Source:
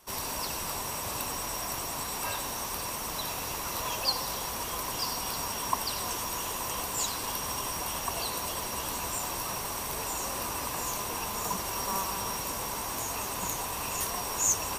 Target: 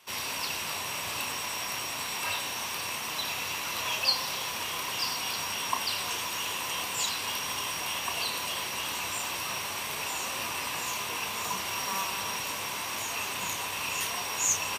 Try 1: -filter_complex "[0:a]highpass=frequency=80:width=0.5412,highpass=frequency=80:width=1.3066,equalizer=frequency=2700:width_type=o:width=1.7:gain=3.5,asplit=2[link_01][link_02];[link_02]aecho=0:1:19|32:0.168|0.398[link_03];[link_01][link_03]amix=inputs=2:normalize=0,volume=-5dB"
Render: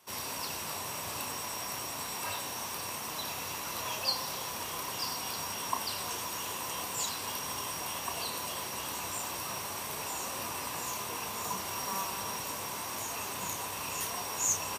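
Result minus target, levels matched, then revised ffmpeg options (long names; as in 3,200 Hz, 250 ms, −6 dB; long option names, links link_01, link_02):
2,000 Hz band −4.0 dB
-filter_complex "[0:a]highpass=frequency=80:width=0.5412,highpass=frequency=80:width=1.3066,equalizer=frequency=2700:width_type=o:width=1.7:gain=13,asplit=2[link_01][link_02];[link_02]aecho=0:1:19|32:0.168|0.398[link_03];[link_01][link_03]amix=inputs=2:normalize=0,volume=-5dB"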